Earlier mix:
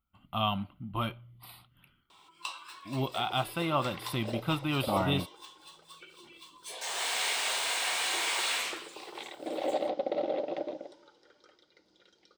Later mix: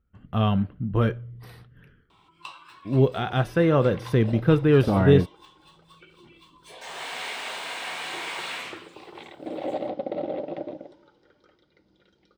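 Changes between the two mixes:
speech: remove phaser with its sweep stopped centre 1,700 Hz, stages 6
master: add bass and treble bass +14 dB, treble −11 dB

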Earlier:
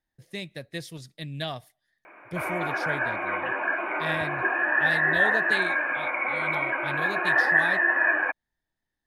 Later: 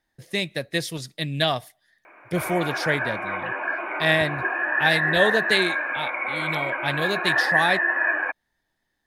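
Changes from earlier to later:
speech +11.0 dB
master: add low-shelf EQ 180 Hz −7 dB

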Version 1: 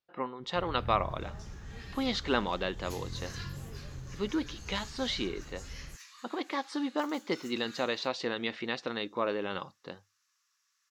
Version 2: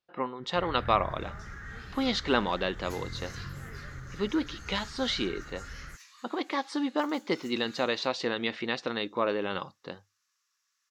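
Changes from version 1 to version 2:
speech +3.0 dB
first sound: add flat-topped bell 1,600 Hz +15 dB 1 octave
reverb: off

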